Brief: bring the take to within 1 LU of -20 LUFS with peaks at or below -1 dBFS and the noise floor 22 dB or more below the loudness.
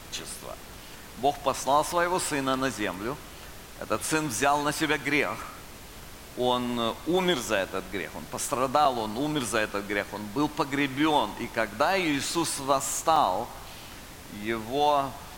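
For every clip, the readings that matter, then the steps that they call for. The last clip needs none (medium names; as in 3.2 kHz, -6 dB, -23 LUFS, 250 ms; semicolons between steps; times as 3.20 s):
dropouts 4; longest dropout 3.6 ms; noise floor -45 dBFS; noise floor target -49 dBFS; loudness -27.0 LUFS; peak level -9.0 dBFS; loudness target -20.0 LUFS
-> interpolate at 3.95/8.85/11.44/13.16 s, 3.6 ms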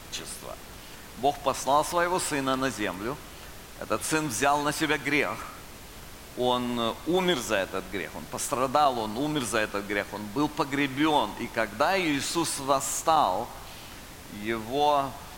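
dropouts 0; noise floor -45 dBFS; noise floor target -49 dBFS
-> noise print and reduce 6 dB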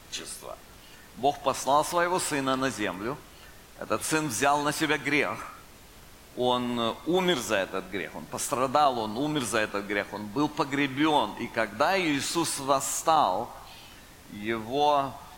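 noise floor -50 dBFS; loudness -27.0 LUFS; peak level -9.0 dBFS; loudness target -20.0 LUFS
-> trim +7 dB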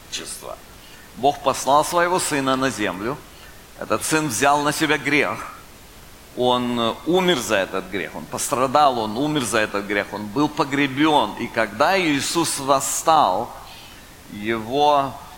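loudness -20.0 LUFS; peak level -2.0 dBFS; noise floor -43 dBFS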